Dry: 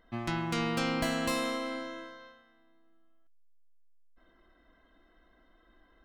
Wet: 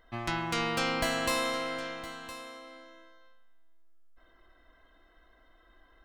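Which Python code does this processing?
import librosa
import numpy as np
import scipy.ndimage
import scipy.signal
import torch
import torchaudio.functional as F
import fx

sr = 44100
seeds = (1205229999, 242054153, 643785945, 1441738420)

y = fx.peak_eq(x, sr, hz=210.0, db=-9.0, octaves=1.5)
y = y + 10.0 ** (-14.5 / 20.0) * np.pad(y, (int(1013 * sr / 1000.0), 0))[:len(y)]
y = y * librosa.db_to_amplitude(3.5)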